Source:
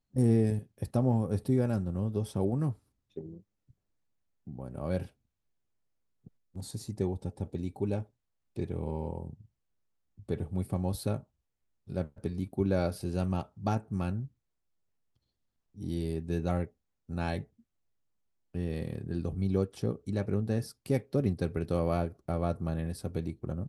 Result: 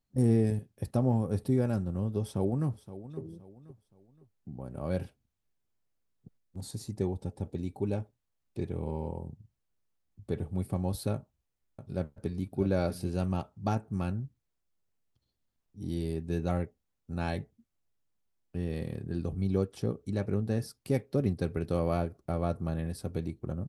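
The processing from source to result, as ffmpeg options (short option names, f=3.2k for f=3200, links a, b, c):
-filter_complex "[0:a]asplit=2[a][b];[b]afade=t=in:st=2.21:d=0.01,afade=t=out:st=3.2:d=0.01,aecho=0:1:520|1040|1560:0.188365|0.0659277|0.0230747[c];[a][c]amix=inputs=2:normalize=0,asettb=1/sr,asplit=3[d][e][f];[d]atrim=end=11.144[g];[e]atrim=start=11.14:end=13.1,asetpts=PTS-STARTPTS,afade=t=in:d=0.004:c=qsin,afade=t=out:st=1.956:d=0.004:c=qsin,aecho=1:1:645:0.316,atrim=end_sample=86436[h];[f]atrim=start=13.096[i];[g][h]acrossfade=d=0.004:c1=hsin:c2=qsin[j];[j][i]acrossfade=d=0.004:c1=qsin:c2=hsin"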